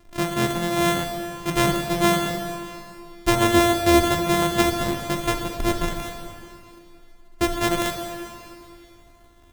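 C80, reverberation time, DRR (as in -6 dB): 5.0 dB, 2.5 s, 3.0 dB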